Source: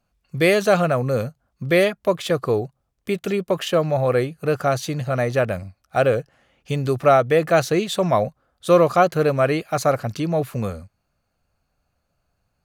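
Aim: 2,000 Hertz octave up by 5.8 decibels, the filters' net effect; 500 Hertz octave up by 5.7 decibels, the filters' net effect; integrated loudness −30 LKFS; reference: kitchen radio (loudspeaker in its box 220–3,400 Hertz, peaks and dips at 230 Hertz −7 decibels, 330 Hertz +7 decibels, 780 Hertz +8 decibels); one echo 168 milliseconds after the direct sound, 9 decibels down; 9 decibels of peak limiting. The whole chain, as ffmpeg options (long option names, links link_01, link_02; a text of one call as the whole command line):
ffmpeg -i in.wav -af "equalizer=frequency=500:width_type=o:gain=4.5,equalizer=frequency=2000:width_type=o:gain=7,alimiter=limit=-8dB:level=0:latency=1,highpass=220,equalizer=frequency=230:width_type=q:width=4:gain=-7,equalizer=frequency=330:width_type=q:width=4:gain=7,equalizer=frequency=780:width_type=q:width=4:gain=8,lowpass=frequency=3400:width=0.5412,lowpass=frequency=3400:width=1.3066,aecho=1:1:168:0.355,volume=-12dB" out.wav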